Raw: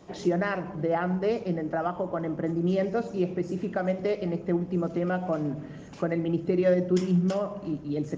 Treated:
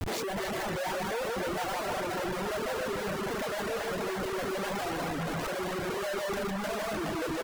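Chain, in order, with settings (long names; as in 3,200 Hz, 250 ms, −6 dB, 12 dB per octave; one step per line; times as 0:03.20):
high-pass filter 51 Hz 12 dB per octave
low-shelf EQ 210 Hz −10.5 dB
hum removal 91.89 Hz, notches 9
on a send: repeating echo 168 ms, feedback 20%, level −3 dB
on the sum: dynamic equaliser 460 Hz, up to +6 dB, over −44 dBFS, Q 4.4
in parallel at −1 dB: compressor whose output falls as the input rises −38 dBFS, ratio −1
on the sum: comparator with hysteresis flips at −38.5 dBFS
speed change +10%
soft clipping −31.5 dBFS, distortion −21 dB
feedback echo with a band-pass in the loop 282 ms, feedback 82%, band-pass 1,300 Hz, level −3 dB
reverb reduction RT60 0.81 s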